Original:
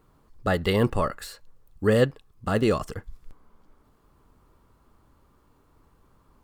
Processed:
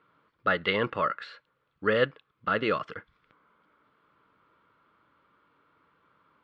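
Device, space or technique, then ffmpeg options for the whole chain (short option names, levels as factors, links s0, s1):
kitchen radio: -af "highpass=230,equalizer=f=240:t=q:w=4:g=-7,equalizer=f=380:t=q:w=4:g=-6,equalizer=f=760:t=q:w=4:g=-8,equalizer=f=1400:t=q:w=4:g=9,equalizer=f=2200:t=q:w=4:g=6,equalizer=f=3300:t=q:w=4:g=4,lowpass=f=3700:w=0.5412,lowpass=f=3700:w=1.3066,volume=0.841"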